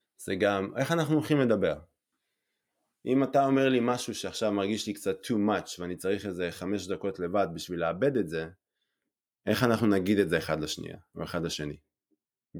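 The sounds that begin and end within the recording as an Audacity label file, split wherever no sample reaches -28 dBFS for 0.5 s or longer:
3.070000	8.450000	sound
9.470000	11.700000	sound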